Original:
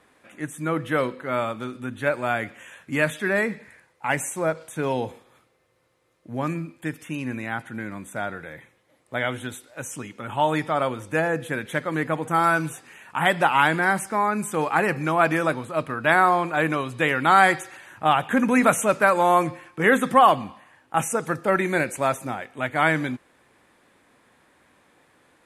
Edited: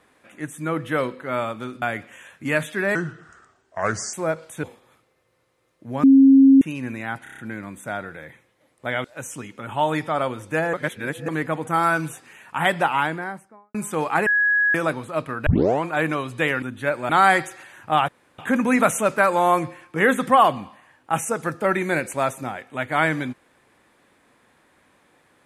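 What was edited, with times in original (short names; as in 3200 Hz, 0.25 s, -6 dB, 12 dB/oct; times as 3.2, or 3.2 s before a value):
1.82–2.29 move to 17.23
3.42–4.32 speed 76%
4.82–5.07 cut
6.47–7.05 bleep 270 Hz -8 dBFS
7.67 stutter 0.03 s, 6 plays
9.33–9.65 cut
11.34–11.89 reverse
13.28–14.35 studio fade out
14.87–15.35 bleep 1670 Hz -15.5 dBFS
16.07 tape start 0.37 s
18.22 insert room tone 0.30 s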